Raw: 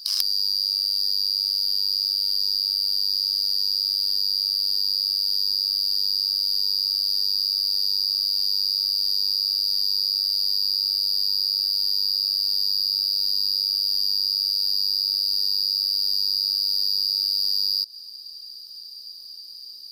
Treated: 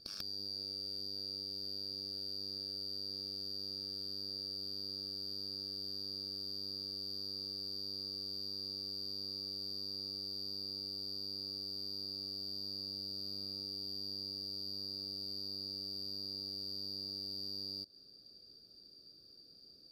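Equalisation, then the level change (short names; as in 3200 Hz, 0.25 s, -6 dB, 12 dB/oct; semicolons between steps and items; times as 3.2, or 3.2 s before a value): running mean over 44 samples; +7.0 dB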